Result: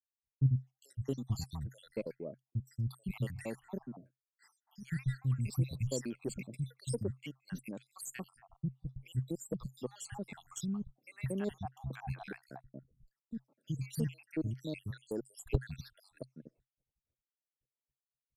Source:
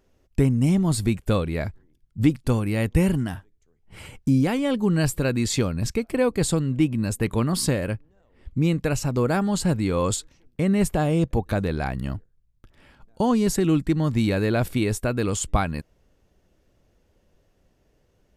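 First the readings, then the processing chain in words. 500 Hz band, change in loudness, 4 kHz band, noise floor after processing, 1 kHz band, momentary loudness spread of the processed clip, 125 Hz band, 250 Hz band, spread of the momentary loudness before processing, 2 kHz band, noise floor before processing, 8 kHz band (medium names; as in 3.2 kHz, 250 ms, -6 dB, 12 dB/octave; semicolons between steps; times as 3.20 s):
-18.0 dB, -16.0 dB, -18.5 dB, under -85 dBFS, -21.5 dB, 14 LU, -12.5 dB, -18.5 dB, 9 LU, -18.5 dB, -65 dBFS, -16.5 dB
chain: random holes in the spectrogram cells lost 75%; three bands offset in time lows, highs, mids 440/670 ms, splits 210/1100 Hz; expander -53 dBFS; Chebyshev shaper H 3 -13 dB, 5 -26 dB, 6 -36 dB, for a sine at -10 dBFS; peaking EQ 130 Hz +12 dB 0.27 oct; trim -6 dB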